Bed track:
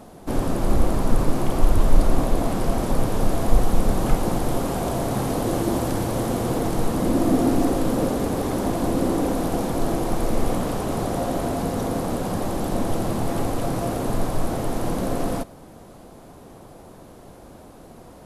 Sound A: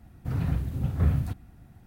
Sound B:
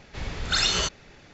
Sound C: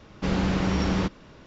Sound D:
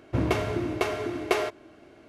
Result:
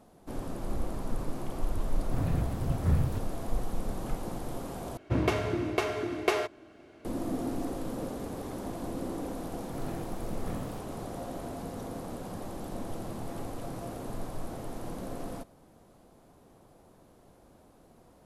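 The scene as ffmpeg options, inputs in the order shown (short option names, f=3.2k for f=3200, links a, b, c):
-filter_complex "[1:a]asplit=2[a][b];[0:a]volume=-14dB[c];[b]highpass=200[d];[c]asplit=2[e][f];[e]atrim=end=4.974[g];[4:a]atrim=end=2.08,asetpts=PTS-STARTPTS,volume=-2dB[h];[f]atrim=start=7.046[i];[a]atrim=end=1.86,asetpts=PTS-STARTPTS,volume=-3dB,afade=t=in:d=0.004:c=hsin,afade=t=out:st=1.856:d=0.004:c=hsin,adelay=1860[j];[d]atrim=end=1.86,asetpts=PTS-STARTPTS,volume=-7dB,afade=t=in:d=0.004:c=hsin,afade=t=out:st=1.856:d=0.004:c=hsin,adelay=9470[k];[g][h]acrossfade=d=0.004:c1=hsin:c2=hsin[l];[l][i]acrossfade=d=0.004:c1=hsin:c2=hsin[m];[m][j][k]amix=inputs=3:normalize=0"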